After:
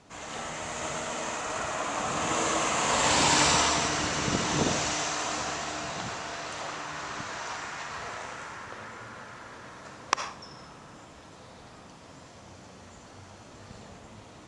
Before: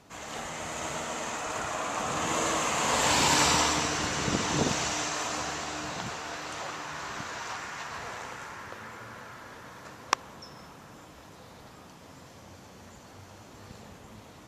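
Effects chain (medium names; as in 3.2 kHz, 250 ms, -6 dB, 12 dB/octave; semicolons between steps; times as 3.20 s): steep low-pass 10 kHz 48 dB/octave; on a send: reverberation RT60 0.45 s, pre-delay 30 ms, DRR 6 dB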